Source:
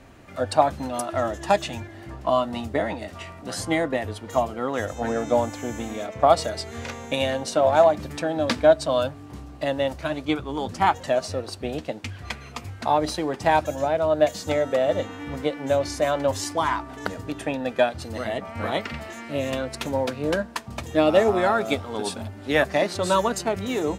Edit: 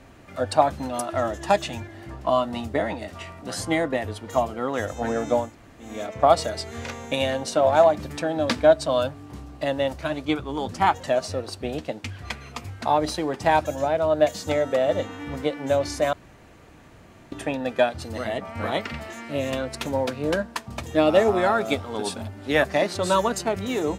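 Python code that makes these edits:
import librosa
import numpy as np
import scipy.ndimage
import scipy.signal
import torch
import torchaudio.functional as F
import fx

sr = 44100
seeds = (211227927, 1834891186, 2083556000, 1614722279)

y = fx.edit(x, sr, fx.room_tone_fill(start_s=5.44, length_s=0.45, crossfade_s=0.24),
    fx.room_tone_fill(start_s=16.13, length_s=1.19), tone=tone)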